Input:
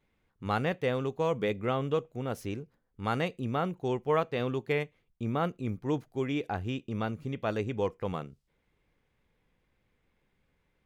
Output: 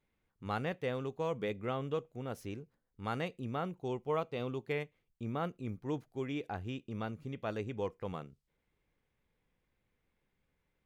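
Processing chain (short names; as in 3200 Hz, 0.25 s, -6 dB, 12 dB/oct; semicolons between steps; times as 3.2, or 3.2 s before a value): 3.78–4.66 bell 1700 Hz -12 dB 0.23 oct; gain -6.5 dB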